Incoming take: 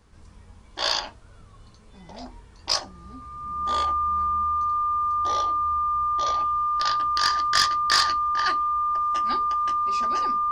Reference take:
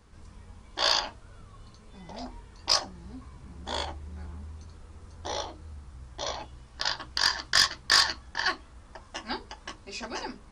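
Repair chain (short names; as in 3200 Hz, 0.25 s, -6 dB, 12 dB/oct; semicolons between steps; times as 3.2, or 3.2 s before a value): notch 1200 Hz, Q 30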